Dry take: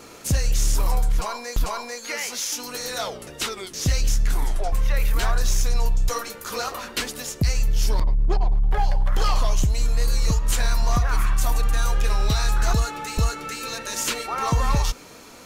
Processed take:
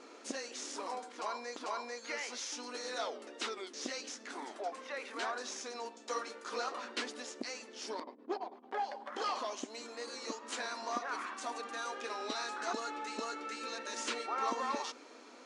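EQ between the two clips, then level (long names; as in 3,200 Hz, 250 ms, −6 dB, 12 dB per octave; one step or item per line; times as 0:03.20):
linear-phase brick-wall band-pass 220–11,000 Hz
high-frequency loss of the air 97 metres
parametric band 2,700 Hz −2 dB
−8.0 dB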